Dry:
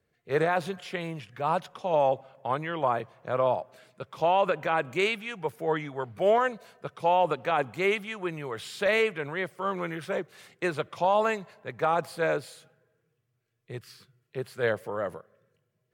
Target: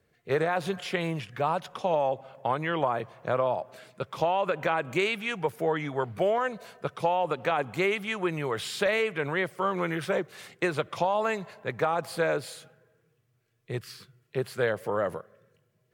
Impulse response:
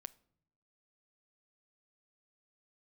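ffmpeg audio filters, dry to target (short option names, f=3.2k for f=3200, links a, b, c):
-af "acompressor=threshold=-28dB:ratio=6,volume=5.5dB"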